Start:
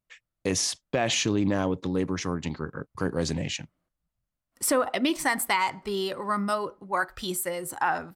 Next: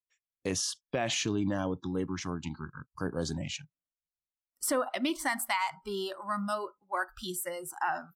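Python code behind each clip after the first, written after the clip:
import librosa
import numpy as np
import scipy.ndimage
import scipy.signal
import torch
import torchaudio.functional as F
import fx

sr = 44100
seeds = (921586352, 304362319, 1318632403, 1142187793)

y = fx.noise_reduce_blind(x, sr, reduce_db=21)
y = y * 10.0 ** (-5.5 / 20.0)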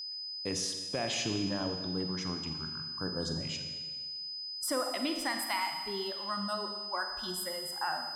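y = fx.rev_schroeder(x, sr, rt60_s=1.5, comb_ms=38, drr_db=5.0)
y = y + 10.0 ** (-34.0 / 20.0) * np.sin(2.0 * np.pi * 5000.0 * np.arange(len(y)) / sr)
y = y * 10.0 ** (-4.0 / 20.0)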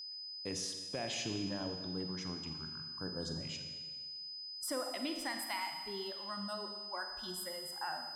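y = fx.dynamic_eq(x, sr, hz=1200.0, q=3.4, threshold_db=-52.0, ratio=4.0, max_db=-4)
y = y * 10.0 ** (-5.5 / 20.0)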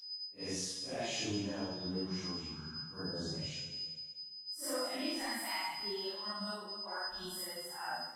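y = fx.phase_scramble(x, sr, seeds[0], window_ms=200)
y = y * 10.0 ** (1.0 / 20.0)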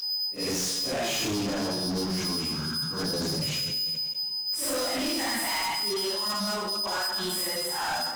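y = scipy.signal.sosfilt(scipy.signal.butter(2, 100.0, 'highpass', fs=sr, output='sos'), x)
y = fx.leveller(y, sr, passes=5)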